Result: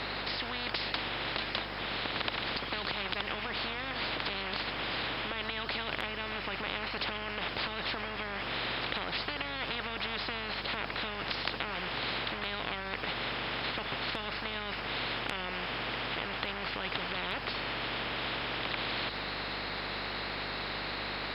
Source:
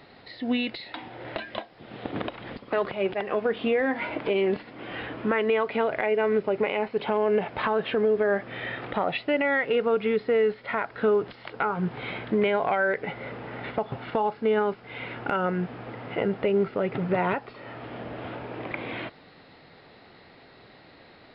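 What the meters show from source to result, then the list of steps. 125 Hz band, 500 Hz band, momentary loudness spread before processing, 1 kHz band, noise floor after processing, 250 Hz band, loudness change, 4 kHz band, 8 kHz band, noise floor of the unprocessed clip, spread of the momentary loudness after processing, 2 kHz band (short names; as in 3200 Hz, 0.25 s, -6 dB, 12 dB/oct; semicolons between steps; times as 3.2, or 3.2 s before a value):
-7.0 dB, -16.0 dB, 13 LU, -6.0 dB, -39 dBFS, -12.0 dB, -7.0 dB, +7.5 dB, n/a, -52 dBFS, 2 LU, -2.0 dB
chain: limiter -19.5 dBFS, peak gain reduction 5.5 dB; hum 50 Hz, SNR 20 dB; spectral compressor 10:1; gain +5.5 dB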